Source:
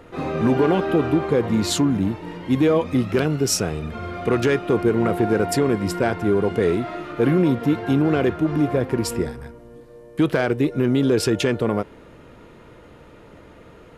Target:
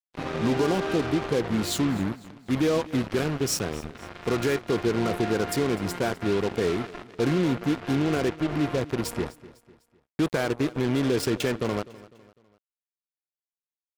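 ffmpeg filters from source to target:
-af "acrusher=bits=3:mix=0:aa=0.5,aecho=1:1:251|502|753:0.106|0.0455|0.0196,volume=0.501"

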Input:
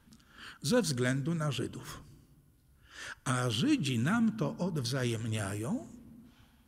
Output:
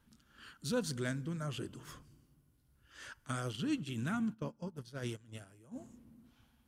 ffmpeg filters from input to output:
-filter_complex "[0:a]asettb=1/sr,asplit=3[s0][s1][s2];[s0]atrim=end=3.264[s3];[s1]atrim=start=3.26:end=5.76,asetpts=PTS-STARTPTS,afade=t=in:d=0.004:c=qsin,afade=t=out:st=2.496:d=0.004:c=qsin,agate=range=0.126:threshold=0.0282:ratio=16:detection=peak[s4];[s2]atrim=start=5.756[s5];[s3][s4]acrossfade=d=0.004:c1=hsin:c2=qsin[s6];[s6][s5]acrossfade=d=0.004:c1=qsin:c2=hsin,volume=0.473"

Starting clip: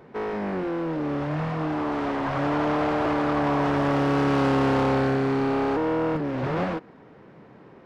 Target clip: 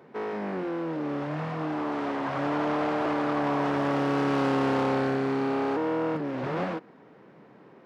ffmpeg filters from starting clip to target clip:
-af "highpass=150,volume=0.708"

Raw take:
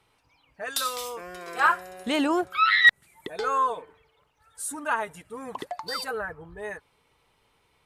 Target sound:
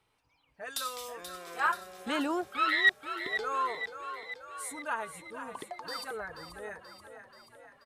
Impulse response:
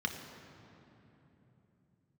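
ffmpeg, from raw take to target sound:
-filter_complex "[0:a]asplit=8[s0][s1][s2][s3][s4][s5][s6][s7];[s1]adelay=482,afreqshift=31,volume=0.316[s8];[s2]adelay=964,afreqshift=62,volume=0.193[s9];[s3]adelay=1446,afreqshift=93,volume=0.117[s10];[s4]adelay=1928,afreqshift=124,volume=0.0716[s11];[s5]adelay=2410,afreqshift=155,volume=0.0437[s12];[s6]adelay=2892,afreqshift=186,volume=0.0266[s13];[s7]adelay=3374,afreqshift=217,volume=0.0162[s14];[s0][s8][s9][s10][s11][s12][s13][s14]amix=inputs=8:normalize=0,volume=0.422"

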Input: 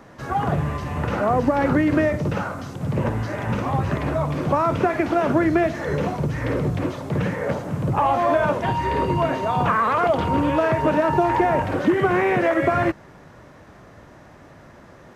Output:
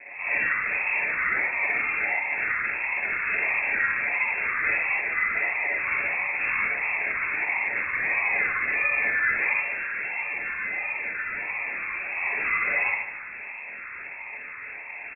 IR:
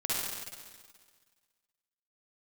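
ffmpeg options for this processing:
-filter_complex "[0:a]highpass=f=520:w=0.5412,highpass=f=520:w=1.3066,acompressor=threshold=0.0316:ratio=6,alimiter=level_in=1.68:limit=0.0631:level=0:latency=1:release=198,volume=0.596,acrusher=samples=29:mix=1:aa=0.000001:lfo=1:lforange=17.4:lforate=1.5,acontrast=72,asettb=1/sr,asplit=3[s0][s1][s2];[s0]atrim=end=9.514[s3];[s1]atrim=start=9.51:end=12.17,asetpts=PTS-STARTPTS,afade=t=in:d=0.004:c=qsin,afade=t=out:st=2.656:d=0.004:c=qsin,volume=53.1,asoftclip=hard,volume=0.0188[s4];[s2]atrim=start=12.166[s5];[s3][s4]acrossfade=d=0.004:c1=hsin:c2=qsin[s6];[s6][s5]acrossfade=d=0.004:c1=qsin:c2=hsin,aecho=1:1:148|296|444|592:0.282|0.116|0.0474|0.0194[s7];[1:a]atrim=start_sample=2205,atrim=end_sample=6174[s8];[s7][s8]afir=irnorm=-1:irlink=0,lowpass=f=2300:t=q:w=0.5098,lowpass=f=2300:t=q:w=0.6013,lowpass=f=2300:t=q:w=0.9,lowpass=f=2300:t=q:w=2.563,afreqshift=-2700"

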